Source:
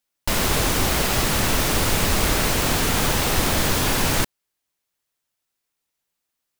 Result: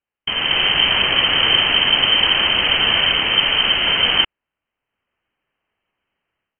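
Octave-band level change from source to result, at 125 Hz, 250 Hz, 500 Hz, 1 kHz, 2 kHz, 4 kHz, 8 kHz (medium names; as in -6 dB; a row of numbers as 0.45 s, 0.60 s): -10.0 dB, -6.5 dB, -3.0 dB, +0.5 dB, +7.5 dB, +14.0 dB, under -40 dB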